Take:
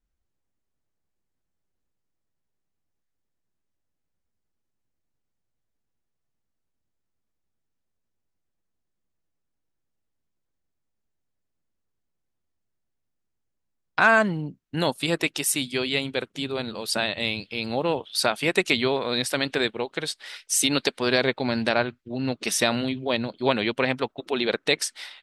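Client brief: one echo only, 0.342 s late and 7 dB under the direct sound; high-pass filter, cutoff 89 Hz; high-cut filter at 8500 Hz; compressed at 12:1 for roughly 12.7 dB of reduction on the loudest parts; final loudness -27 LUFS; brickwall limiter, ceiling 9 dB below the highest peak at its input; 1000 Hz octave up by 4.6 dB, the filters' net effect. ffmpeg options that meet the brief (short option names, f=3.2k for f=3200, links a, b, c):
-af "highpass=89,lowpass=8.5k,equalizer=f=1k:t=o:g=6,acompressor=threshold=-22dB:ratio=12,alimiter=limit=-15.5dB:level=0:latency=1,aecho=1:1:342:0.447,volume=2dB"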